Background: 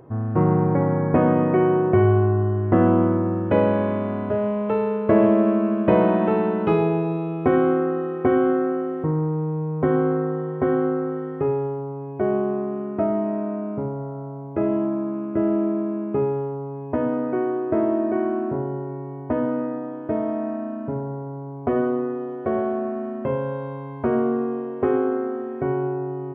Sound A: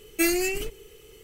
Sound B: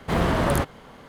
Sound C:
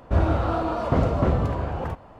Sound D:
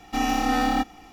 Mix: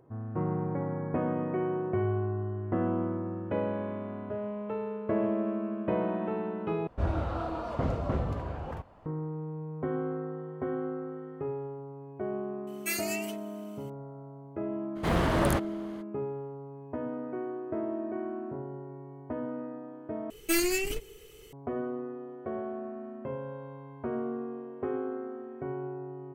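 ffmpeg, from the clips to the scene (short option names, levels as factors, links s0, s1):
-filter_complex "[1:a]asplit=2[s0][s1];[0:a]volume=0.237[s2];[s0]highpass=850[s3];[s1]aeval=exprs='(tanh(8.91*val(0)+0.5)-tanh(0.5))/8.91':c=same[s4];[s2]asplit=3[s5][s6][s7];[s5]atrim=end=6.874[s8];[3:a]atrim=end=2.19,asetpts=PTS-STARTPTS,volume=0.355[s9];[s6]atrim=start=9.056:end=20.304[s10];[s4]atrim=end=1.23[s11];[s7]atrim=start=21.526[s12];[s3]atrim=end=1.23,asetpts=PTS-STARTPTS,volume=0.473,afade=t=in:d=0.004:c=hsin,afade=t=out:st=1.226:d=0.004:c=hsin,adelay=12670[s13];[2:a]atrim=end=1.08,asetpts=PTS-STARTPTS,volume=0.596,afade=t=in:d=0.02,afade=t=out:st=1.06:d=0.02,adelay=14950[s14];[s8][s9]acrossfade=d=0.004:c1=hsin:c2=hsin[s15];[s15][s10]acrossfade=d=0.004:c1=hsin:c2=hsin[s16];[s16][s11]acrossfade=d=0.004:c1=hsin:c2=hsin[s17];[s17][s12]acrossfade=d=0.004:c1=hsin:c2=hsin[s18];[s18][s13][s14]amix=inputs=3:normalize=0"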